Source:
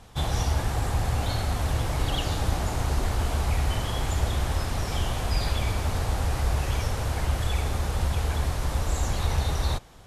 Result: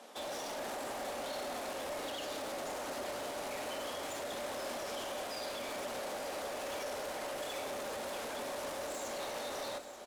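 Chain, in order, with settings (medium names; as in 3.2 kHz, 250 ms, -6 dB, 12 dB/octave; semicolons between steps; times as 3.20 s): steep high-pass 240 Hz 36 dB/octave; peaking EQ 580 Hz +12 dB 0.25 oct; peak limiter -27.5 dBFS, peak gain reduction 9 dB; hard clipper -37 dBFS, distortion -10 dB; delay 884 ms -12.5 dB; on a send at -9.5 dB: reverberation RT60 2.0 s, pre-delay 6 ms; on the sum: trim -1.5 dB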